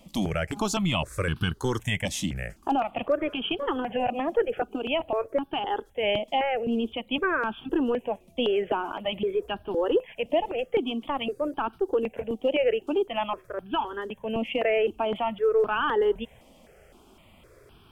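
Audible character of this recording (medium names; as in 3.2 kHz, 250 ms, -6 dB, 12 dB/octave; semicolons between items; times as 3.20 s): notches that jump at a steady rate 3.9 Hz 410–2000 Hz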